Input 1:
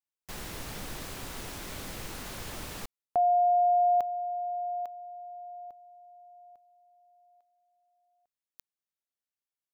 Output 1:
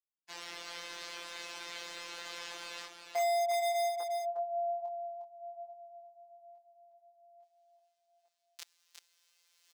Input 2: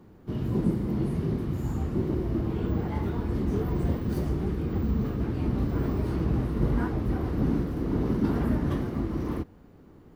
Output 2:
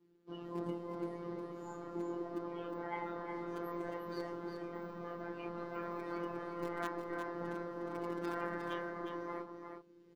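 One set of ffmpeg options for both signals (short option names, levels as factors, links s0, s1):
-filter_complex "[0:a]highpass=44,afftdn=nr=20:nf=-46,acrossover=split=330 5900:gain=0.0794 1 0.0794[s0][s1][s2];[s0][s1][s2]amix=inputs=3:normalize=0,flanger=delay=19:depth=5:speed=0.75,acrossover=split=2400[s3][s4];[s3]asoftclip=type=hard:threshold=0.0335[s5];[s5][s4]amix=inputs=2:normalize=0,afftfilt=real='hypot(re,im)*cos(PI*b)':imag='0':win_size=1024:overlap=0.75,areverse,acompressor=mode=upward:threshold=0.00141:ratio=2.5:attack=71:release=991:knee=2.83:detection=peak,areverse,crystalizer=i=8.5:c=0,aecho=1:1:358:0.473"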